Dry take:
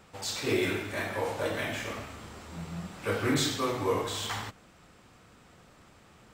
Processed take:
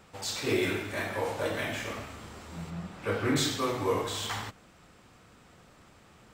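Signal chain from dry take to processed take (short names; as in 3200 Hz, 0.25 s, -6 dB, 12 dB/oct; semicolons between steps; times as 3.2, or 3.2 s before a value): 2.7–3.36 high shelf 4700 Hz -8.5 dB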